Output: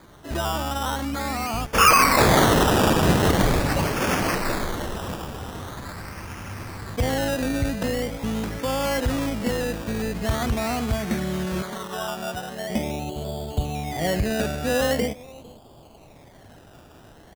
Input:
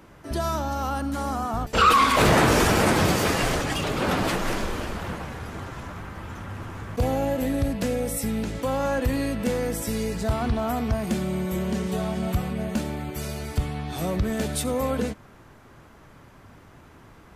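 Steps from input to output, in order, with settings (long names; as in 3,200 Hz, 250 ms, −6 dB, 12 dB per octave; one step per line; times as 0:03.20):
0:11.62–0:12.70: spectral tilt +4.5 dB per octave
low-pass filter sweep 2,800 Hz → 720 Hz, 0:10.93–0:12.33
0:03.06–0:03.88: low-shelf EQ 300 Hz +7 dB
slap from a distant wall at 78 metres, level −22 dB
sample-and-hold swept by an LFO 16×, swing 60% 0.43 Hz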